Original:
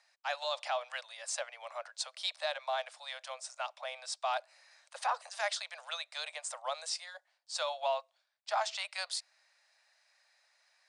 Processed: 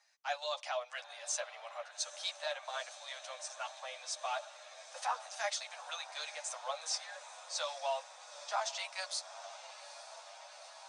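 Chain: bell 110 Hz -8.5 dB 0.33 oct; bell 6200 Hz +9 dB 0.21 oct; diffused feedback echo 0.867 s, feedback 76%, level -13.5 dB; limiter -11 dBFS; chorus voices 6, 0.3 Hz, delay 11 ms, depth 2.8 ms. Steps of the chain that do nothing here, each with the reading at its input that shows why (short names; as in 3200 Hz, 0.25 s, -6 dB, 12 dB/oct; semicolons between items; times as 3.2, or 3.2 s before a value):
bell 110 Hz: input band starts at 430 Hz; limiter -11 dBFS: input peak -19.0 dBFS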